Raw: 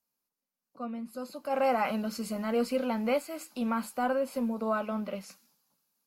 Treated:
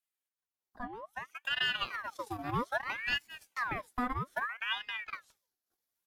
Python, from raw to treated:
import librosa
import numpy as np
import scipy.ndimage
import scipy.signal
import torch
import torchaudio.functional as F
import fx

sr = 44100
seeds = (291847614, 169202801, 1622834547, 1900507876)

y = fx.transient(x, sr, attack_db=7, sustain_db=-11)
y = fx.ring_lfo(y, sr, carrier_hz=1400.0, swing_pct=65, hz=0.62)
y = y * librosa.db_to_amplitude(-4.5)